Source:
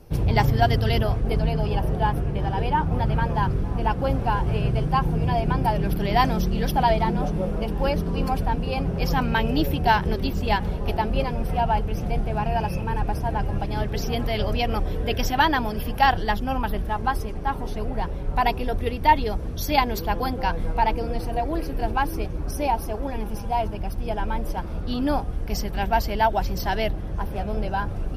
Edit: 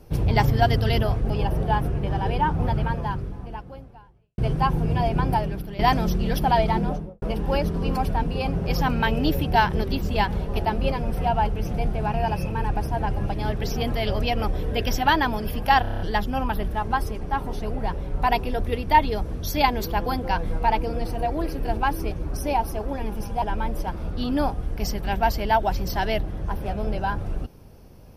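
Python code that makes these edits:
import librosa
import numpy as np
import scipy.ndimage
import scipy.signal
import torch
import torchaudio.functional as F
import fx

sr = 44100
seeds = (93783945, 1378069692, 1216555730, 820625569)

y = fx.studio_fade_out(x, sr, start_s=7.12, length_s=0.42)
y = fx.edit(y, sr, fx.cut(start_s=1.3, length_s=0.32),
    fx.fade_out_span(start_s=3.0, length_s=1.7, curve='qua'),
    fx.fade_out_to(start_s=5.67, length_s=0.44, curve='qua', floor_db=-11.5),
    fx.stutter(start_s=16.14, slice_s=0.03, count=7),
    fx.cut(start_s=23.56, length_s=0.56), tone=tone)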